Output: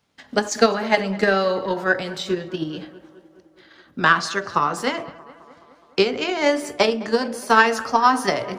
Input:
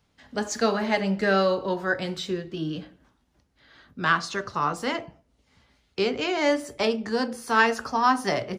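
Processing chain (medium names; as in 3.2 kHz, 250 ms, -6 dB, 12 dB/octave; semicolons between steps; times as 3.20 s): high-pass 200 Hz 6 dB/octave; transient shaper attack +10 dB, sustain +6 dB; tape echo 210 ms, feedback 73%, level -18 dB, low-pass 2.3 kHz; trim +1 dB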